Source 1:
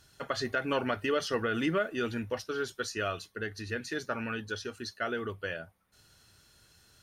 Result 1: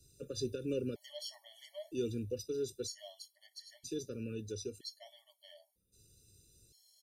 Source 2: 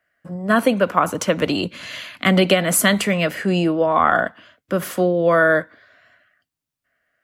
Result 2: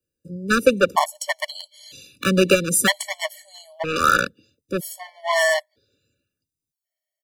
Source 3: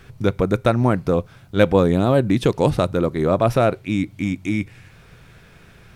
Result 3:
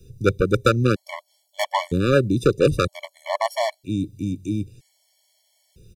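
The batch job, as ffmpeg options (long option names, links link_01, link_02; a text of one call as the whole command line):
ffmpeg -i in.wav -filter_complex "[0:a]lowshelf=frequency=210:gain=-3.5,aecho=1:1:2.2:0.38,acrossover=split=130|450|3800[link_01][link_02][link_03][link_04];[link_03]acrusher=bits=2:mix=0:aa=0.5[link_05];[link_01][link_02][link_05][link_04]amix=inputs=4:normalize=0,afftfilt=real='re*gt(sin(2*PI*0.52*pts/sr)*(1-2*mod(floor(b*sr/1024/580),2)),0)':imag='im*gt(sin(2*PI*0.52*pts/sr)*(1-2*mod(floor(b*sr/1024/580),2)),0)':win_size=1024:overlap=0.75,volume=1.5dB" out.wav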